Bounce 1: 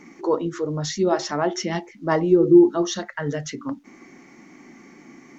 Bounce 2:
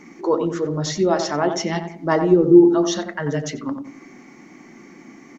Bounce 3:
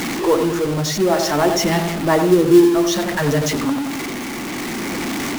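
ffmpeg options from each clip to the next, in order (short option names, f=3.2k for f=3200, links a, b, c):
-filter_complex "[0:a]asplit=2[a][b];[b]adelay=90,lowpass=f=1.1k:p=1,volume=-6dB,asplit=2[c][d];[d]adelay=90,lowpass=f=1.1k:p=1,volume=0.41,asplit=2[e][f];[f]adelay=90,lowpass=f=1.1k:p=1,volume=0.41,asplit=2[g][h];[h]adelay=90,lowpass=f=1.1k:p=1,volume=0.41,asplit=2[i][j];[j]adelay=90,lowpass=f=1.1k:p=1,volume=0.41[k];[a][c][e][g][i][k]amix=inputs=6:normalize=0,volume=2dB"
-af "aeval=exprs='val(0)+0.5*0.0944*sgn(val(0))':c=same,tremolo=f=0.58:d=0.3,acrusher=bits=5:mode=log:mix=0:aa=0.000001,volume=2dB"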